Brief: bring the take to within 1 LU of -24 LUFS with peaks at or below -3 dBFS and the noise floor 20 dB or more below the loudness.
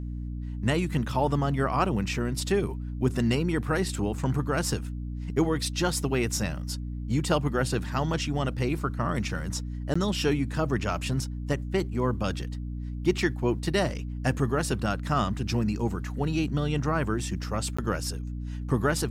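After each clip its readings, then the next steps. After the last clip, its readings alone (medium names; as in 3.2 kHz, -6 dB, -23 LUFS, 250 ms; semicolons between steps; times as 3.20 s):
dropouts 2; longest dropout 15 ms; hum 60 Hz; highest harmonic 300 Hz; hum level -31 dBFS; loudness -28.5 LUFS; peak level -10.5 dBFS; loudness target -24.0 LUFS
-> interpolate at 9.94/17.77 s, 15 ms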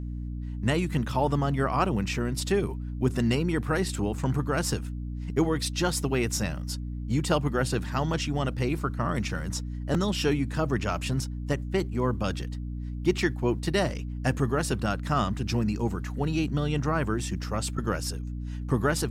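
dropouts 0; hum 60 Hz; highest harmonic 300 Hz; hum level -31 dBFS
-> de-hum 60 Hz, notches 5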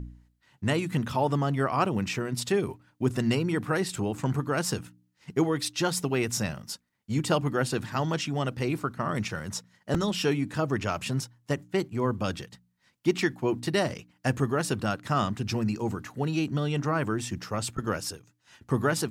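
hum not found; loudness -29.0 LUFS; peak level -10.5 dBFS; loudness target -24.0 LUFS
-> trim +5 dB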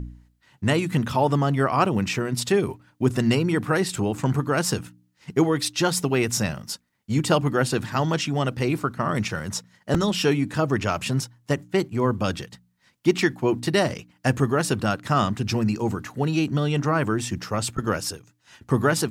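loudness -24.0 LUFS; peak level -5.5 dBFS; noise floor -67 dBFS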